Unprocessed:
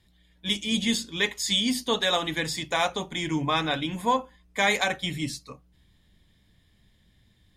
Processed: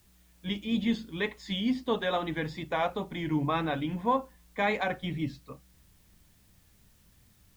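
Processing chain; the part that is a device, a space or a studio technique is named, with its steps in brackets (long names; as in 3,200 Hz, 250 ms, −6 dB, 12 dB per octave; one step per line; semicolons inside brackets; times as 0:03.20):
cassette deck with a dirty head (head-to-tape spacing loss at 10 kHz 36 dB; tape wow and flutter; white noise bed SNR 34 dB)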